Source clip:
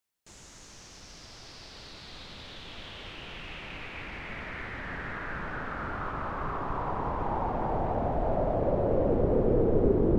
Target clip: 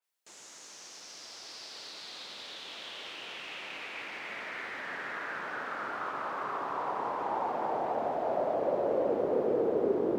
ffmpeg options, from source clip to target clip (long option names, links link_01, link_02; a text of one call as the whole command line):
ffmpeg -i in.wav -af "highpass=390,adynamicequalizer=threshold=0.002:dfrequency=3800:dqfactor=0.7:tfrequency=3800:tqfactor=0.7:attack=5:release=100:ratio=0.375:range=3:mode=boostabove:tftype=highshelf" out.wav